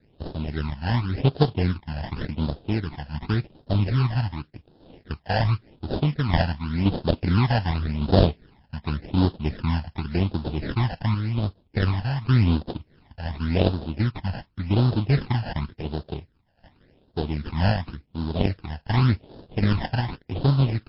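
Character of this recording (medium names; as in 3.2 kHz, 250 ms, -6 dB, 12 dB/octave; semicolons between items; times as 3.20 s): aliases and images of a low sample rate 1.2 kHz, jitter 20%; phasing stages 12, 0.89 Hz, lowest notch 370–2200 Hz; random-step tremolo; MP3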